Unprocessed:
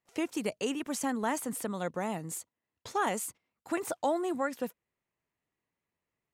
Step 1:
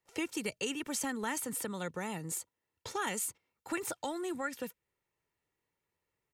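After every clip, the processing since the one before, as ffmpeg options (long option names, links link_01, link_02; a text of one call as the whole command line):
ffmpeg -i in.wav -filter_complex "[0:a]aecho=1:1:2.2:0.38,acrossover=split=270|1400[link_01][link_02][link_03];[link_02]acompressor=threshold=-42dB:ratio=6[link_04];[link_01][link_04][link_03]amix=inputs=3:normalize=0,volume=1dB" out.wav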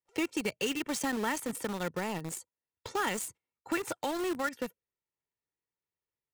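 ffmpeg -i in.wav -filter_complex "[0:a]afftdn=noise_reduction=12:noise_floor=-56,highshelf=frequency=7800:gain=-10,asplit=2[link_01][link_02];[link_02]acrusher=bits=5:mix=0:aa=0.000001,volume=-4dB[link_03];[link_01][link_03]amix=inputs=2:normalize=0" out.wav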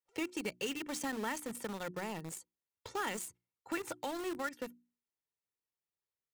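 ffmpeg -i in.wav -af "bandreject=frequency=60:width_type=h:width=6,bandreject=frequency=120:width_type=h:width=6,bandreject=frequency=180:width_type=h:width=6,bandreject=frequency=240:width_type=h:width=6,bandreject=frequency=300:width_type=h:width=6,bandreject=frequency=360:width_type=h:width=6,volume=-5.5dB" out.wav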